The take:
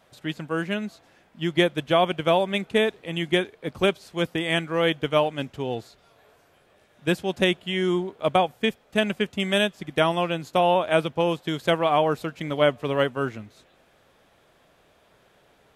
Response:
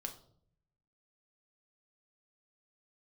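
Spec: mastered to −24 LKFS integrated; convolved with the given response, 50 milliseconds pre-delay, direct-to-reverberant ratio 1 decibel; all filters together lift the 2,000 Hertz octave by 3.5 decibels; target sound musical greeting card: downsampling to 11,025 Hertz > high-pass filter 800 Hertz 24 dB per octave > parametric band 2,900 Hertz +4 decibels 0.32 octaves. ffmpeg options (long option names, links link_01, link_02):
-filter_complex "[0:a]equalizer=frequency=2000:width_type=o:gain=3.5,asplit=2[link_01][link_02];[1:a]atrim=start_sample=2205,adelay=50[link_03];[link_02][link_03]afir=irnorm=-1:irlink=0,volume=1dB[link_04];[link_01][link_04]amix=inputs=2:normalize=0,aresample=11025,aresample=44100,highpass=frequency=800:width=0.5412,highpass=frequency=800:width=1.3066,equalizer=frequency=2900:width_type=o:width=0.32:gain=4"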